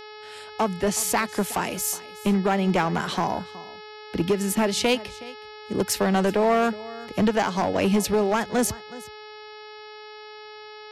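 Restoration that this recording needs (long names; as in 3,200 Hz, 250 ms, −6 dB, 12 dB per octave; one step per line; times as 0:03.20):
clipped peaks rebuilt −15.5 dBFS
hum removal 425.8 Hz, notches 13
echo removal 369 ms −19.5 dB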